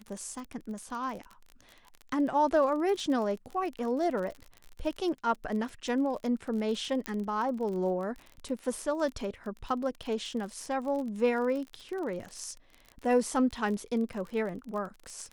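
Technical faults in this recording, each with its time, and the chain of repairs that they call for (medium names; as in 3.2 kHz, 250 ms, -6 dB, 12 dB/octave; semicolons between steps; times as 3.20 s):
crackle 36 per s -36 dBFS
7.06 s: pop -17 dBFS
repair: de-click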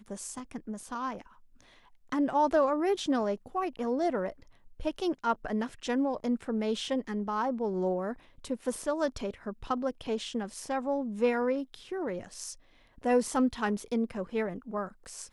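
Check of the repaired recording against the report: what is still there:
7.06 s: pop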